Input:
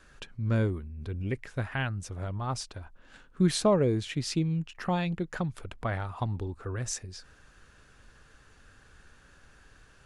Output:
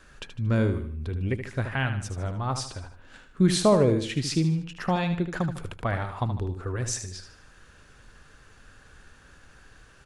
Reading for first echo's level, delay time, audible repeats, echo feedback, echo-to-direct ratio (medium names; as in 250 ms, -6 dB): -9.0 dB, 76 ms, 4, 40%, -8.0 dB